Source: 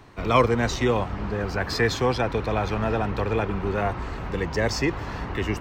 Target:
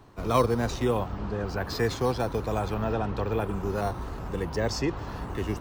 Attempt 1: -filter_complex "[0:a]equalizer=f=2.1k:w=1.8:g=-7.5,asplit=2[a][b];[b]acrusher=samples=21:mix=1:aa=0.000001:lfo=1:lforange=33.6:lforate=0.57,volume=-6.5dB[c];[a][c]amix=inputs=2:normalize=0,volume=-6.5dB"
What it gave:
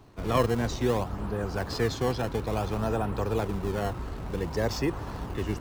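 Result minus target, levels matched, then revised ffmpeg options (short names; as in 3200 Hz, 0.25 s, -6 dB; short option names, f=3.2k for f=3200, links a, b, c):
decimation with a swept rate: distortion +11 dB
-filter_complex "[0:a]equalizer=f=2.1k:w=1.8:g=-7.5,asplit=2[a][b];[b]acrusher=samples=5:mix=1:aa=0.000001:lfo=1:lforange=8:lforate=0.57,volume=-6.5dB[c];[a][c]amix=inputs=2:normalize=0,volume=-6.5dB"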